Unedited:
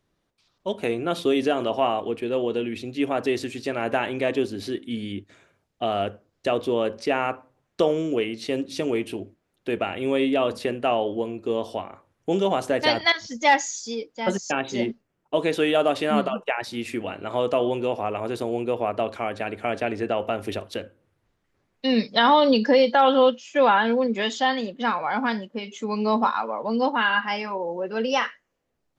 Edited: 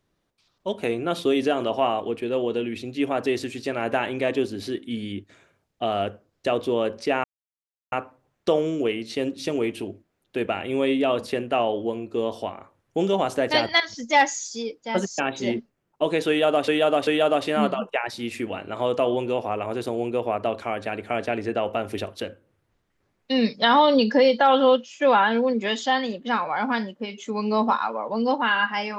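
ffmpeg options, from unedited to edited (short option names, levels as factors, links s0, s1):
-filter_complex "[0:a]asplit=4[s0][s1][s2][s3];[s0]atrim=end=7.24,asetpts=PTS-STARTPTS,afade=t=out:st=7.236:d=0.004:c=hsin,apad=pad_dur=0.68[s4];[s1]atrim=start=7.24:end=16.002,asetpts=PTS-STARTPTS,afade=t=in:d=0.004:c=hsin[s5];[s2]atrim=start=15.608:end=16.002[s6];[s3]atrim=start=15.608[s7];[s4][s5]concat=n=2:v=0:a=1[s8];[s8][s6]acrossfade=d=0.004:c1=hsin:c2=hsin[s9];[s9][s7]acrossfade=d=0.004:c1=hsin:c2=hsin"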